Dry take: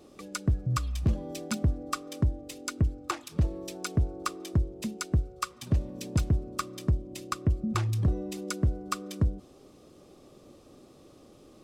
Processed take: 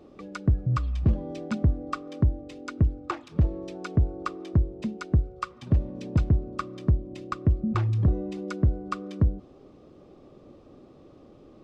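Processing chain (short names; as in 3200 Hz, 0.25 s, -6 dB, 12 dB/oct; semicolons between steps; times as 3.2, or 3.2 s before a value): tape spacing loss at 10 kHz 26 dB; gain +4 dB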